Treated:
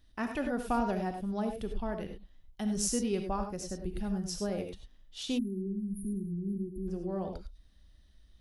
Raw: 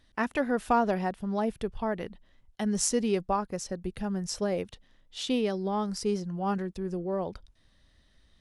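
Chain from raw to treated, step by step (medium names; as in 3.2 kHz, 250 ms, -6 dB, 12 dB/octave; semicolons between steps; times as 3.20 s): graphic EQ 125/250/500/1000/2000/4000/8000 Hz -7/-4/-9/-8/-9/-5/-8 dB; gated-style reverb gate 120 ms rising, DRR 5 dB; spectral selection erased 5.38–6.88 s, 390–9200 Hz; trim +3.5 dB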